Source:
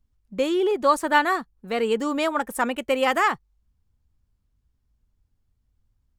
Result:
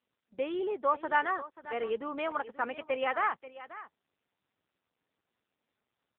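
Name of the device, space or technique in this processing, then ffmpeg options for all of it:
satellite phone: -filter_complex "[0:a]asplit=3[link_01][link_02][link_03];[link_01]afade=type=out:start_time=0.73:duration=0.02[link_04];[link_02]asubboost=boost=9:cutoff=58,afade=type=in:start_time=0.73:duration=0.02,afade=type=out:start_time=1.72:duration=0.02[link_05];[link_03]afade=type=in:start_time=1.72:duration=0.02[link_06];[link_04][link_05][link_06]amix=inputs=3:normalize=0,highpass=370,lowpass=3200,aecho=1:1:536:0.168,volume=-7.5dB" -ar 8000 -c:a libopencore_amrnb -b:a 6700

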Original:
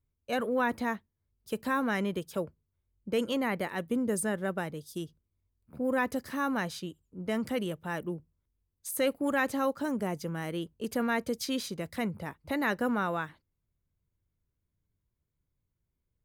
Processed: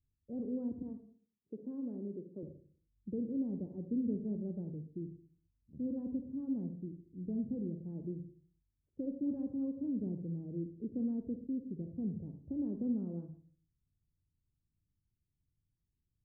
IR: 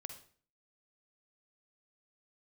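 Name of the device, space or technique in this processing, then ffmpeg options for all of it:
next room: -filter_complex "[0:a]asettb=1/sr,asplit=3[link_01][link_02][link_03];[link_01]atrim=end=0.824[link_04];[link_02]atrim=start=0.82:end=2.43,asetpts=PTS-STARTPTS,afade=type=in:duration=0.004:curve=qsin,afade=type=out:start_time=1.606:duration=0.004:curve=qsin,highpass=290[link_05];[link_03]atrim=start=2.426[link_06];[link_04][link_05]acrossfade=duration=0.004:curve1=hsin:curve2=qsin[link_07];[link_07][link_06]acrossfade=duration=0.004:curve1=qsin:curve2=hsin,lowpass=frequency=340:width=0.5412,lowpass=frequency=340:width=1.3066[link_08];[1:a]atrim=start_sample=2205[link_09];[link_08][link_09]afir=irnorm=-1:irlink=0,volume=1.5dB"

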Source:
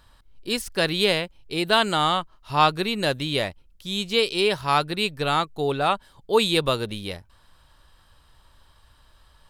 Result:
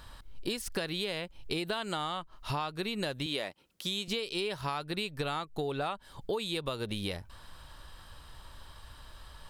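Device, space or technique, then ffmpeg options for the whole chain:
serial compression, peaks first: -filter_complex "[0:a]asettb=1/sr,asplit=3[link_01][link_02][link_03];[link_01]atrim=end=3.264[link_04];[link_02]atrim=start=3.26:end=4.08,asetpts=PTS-STARTPTS,afade=type=in:duration=0.004:curve=qsin,afade=type=out:start_time=0.816:duration=0.004:curve=qsin,highpass=240[link_05];[link_03]atrim=start=4.076[link_06];[link_04][link_05]acrossfade=duration=0.004:curve1=hsin:curve2=qsin[link_07];[link_07][link_06]acrossfade=duration=0.004:curve1=qsin:curve2=hsin,acompressor=threshold=-31dB:ratio=6,acompressor=threshold=-39dB:ratio=2.5,volume=6dB"

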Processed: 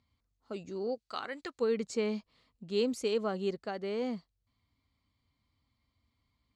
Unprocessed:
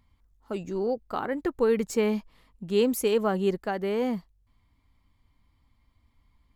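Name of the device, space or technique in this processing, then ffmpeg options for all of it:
car door speaker: -filter_complex "[0:a]asplit=3[link_01][link_02][link_03];[link_01]afade=type=out:start_time=0.94:duration=0.02[link_04];[link_02]tiltshelf=frequency=970:gain=-9.5,afade=type=in:start_time=0.94:duration=0.02,afade=type=out:start_time=1.6:duration=0.02[link_05];[link_03]afade=type=in:start_time=1.6:duration=0.02[link_06];[link_04][link_05][link_06]amix=inputs=3:normalize=0,highpass=87,equalizer=frequency=180:width_type=q:width=4:gain=-4,equalizer=frequency=340:width_type=q:width=4:gain=-3,equalizer=frequency=900:width_type=q:width=4:gain=-6,equalizer=frequency=1700:width_type=q:width=4:gain=-4,equalizer=frequency=4300:width_type=q:width=4:gain=7,lowpass=frequency=8100:width=0.5412,lowpass=frequency=8100:width=1.3066,volume=-6dB"

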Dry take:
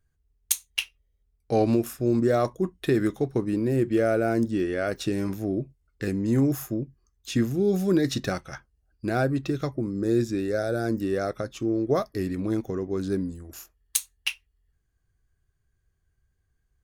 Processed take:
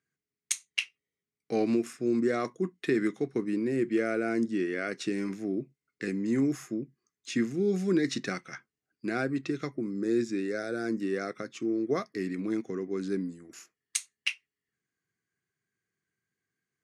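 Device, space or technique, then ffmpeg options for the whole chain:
television speaker: -af "highpass=frequency=170:width=0.5412,highpass=frequency=170:width=1.3066,equalizer=frequency=590:width_type=q:width=4:gain=-9,equalizer=frequency=860:width_type=q:width=4:gain=-8,equalizer=frequency=2100:width_type=q:width=4:gain=8,equalizer=frequency=3500:width_type=q:width=4:gain=-3,lowpass=frequency=8900:width=0.5412,lowpass=frequency=8900:width=1.3066,volume=-3dB"

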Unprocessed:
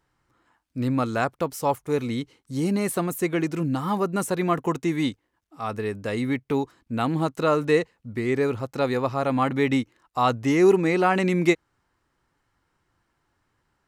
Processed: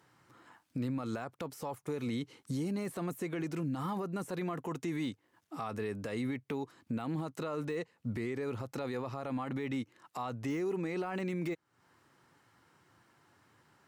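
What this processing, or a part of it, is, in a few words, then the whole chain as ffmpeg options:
podcast mastering chain: -af "highpass=frequency=100:width=0.5412,highpass=frequency=100:width=1.3066,deesser=0.85,acompressor=threshold=-38dB:ratio=4,alimiter=level_in=10.5dB:limit=-24dB:level=0:latency=1:release=26,volume=-10.5dB,volume=7dB" -ar 48000 -c:a libmp3lame -b:a 96k

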